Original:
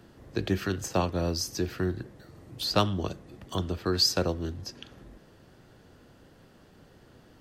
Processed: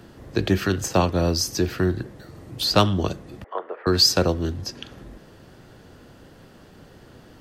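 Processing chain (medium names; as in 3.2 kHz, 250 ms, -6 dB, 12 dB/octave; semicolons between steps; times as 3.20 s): 3.44–3.87 s: Chebyshev band-pass 460–2000 Hz, order 3; in parallel at -7 dB: saturation -19 dBFS, distortion -15 dB; on the sum: trim +4.5 dB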